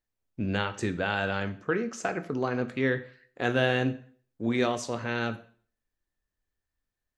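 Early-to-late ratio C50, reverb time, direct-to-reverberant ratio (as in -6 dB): 15.0 dB, 0.45 s, 10.0 dB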